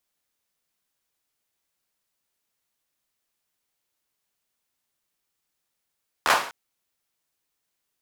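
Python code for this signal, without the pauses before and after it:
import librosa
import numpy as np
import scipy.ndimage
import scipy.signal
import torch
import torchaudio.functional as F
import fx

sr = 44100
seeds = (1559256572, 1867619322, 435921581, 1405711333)

y = fx.drum_clap(sr, seeds[0], length_s=0.25, bursts=4, spacing_ms=13, hz=1000.0, decay_s=0.49)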